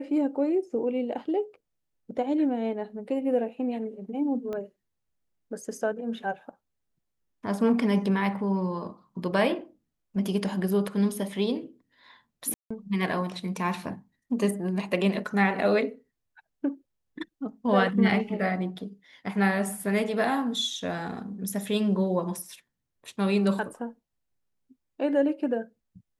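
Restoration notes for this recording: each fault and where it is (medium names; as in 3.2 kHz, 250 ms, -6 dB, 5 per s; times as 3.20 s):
4.53 s: pop -23 dBFS
12.54–12.71 s: dropout 165 ms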